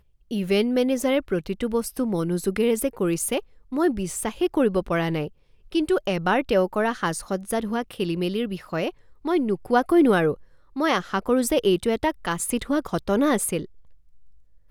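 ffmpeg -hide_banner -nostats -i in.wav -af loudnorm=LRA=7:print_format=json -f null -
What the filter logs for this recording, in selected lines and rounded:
"input_i" : "-24.2",
"input_tp" : "-7.6",
"input_lra" : "3.0",
"input_thresh" : "-34.7",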